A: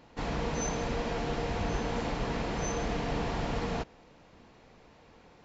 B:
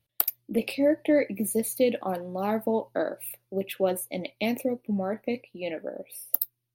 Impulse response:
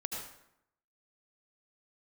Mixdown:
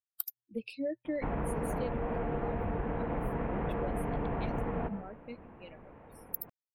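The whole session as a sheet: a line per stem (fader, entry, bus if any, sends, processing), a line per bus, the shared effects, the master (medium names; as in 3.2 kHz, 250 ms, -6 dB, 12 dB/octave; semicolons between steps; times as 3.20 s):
+3.0 dB, 1.05 s, send -11 dB, Bessel low-pass 1.4 kHz, order 8
-8.0 dB, 0.00 s, no send, expander on every frequency bin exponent 2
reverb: on, RT60 0.80 s, pre-delay 67 ms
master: compression, threshold -30 dBFS, peak gain reduction 8 dB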